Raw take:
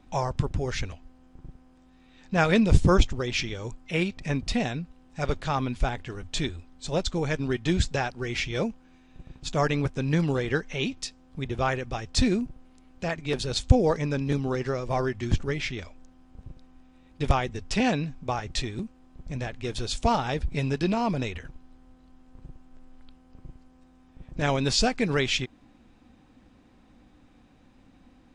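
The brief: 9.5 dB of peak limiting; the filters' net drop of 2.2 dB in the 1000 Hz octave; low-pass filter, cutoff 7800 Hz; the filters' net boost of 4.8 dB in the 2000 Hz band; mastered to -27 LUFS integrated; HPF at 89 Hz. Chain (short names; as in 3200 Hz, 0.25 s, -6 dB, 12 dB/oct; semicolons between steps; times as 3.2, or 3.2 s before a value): HPF 89 Hz; LPF 7800 Hz; bell 1000 Hz -5 dB; bell 2000 Hz +7.5 dB; gain +2 dB; limiter -13.5 dBFS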